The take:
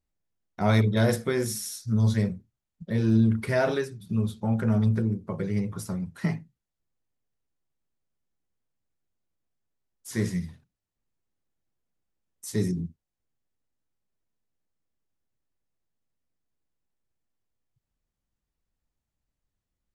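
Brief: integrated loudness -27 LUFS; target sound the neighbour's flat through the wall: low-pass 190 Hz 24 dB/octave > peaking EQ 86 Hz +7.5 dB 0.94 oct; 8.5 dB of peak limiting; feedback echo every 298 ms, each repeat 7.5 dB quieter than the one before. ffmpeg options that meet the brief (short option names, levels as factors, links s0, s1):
-af "alimiter=limit=0.141:level=0:latency=1,lowpass=f=190:w=0.5412,lowpass=f=190:w=1.3066,equalizer=f=86:t=o:w=0.94:g=7.5,aecho=1:1:298|596|894|1192|1490:0.422|0.177|0.0744|0.0312|0.0131,volume=1.12"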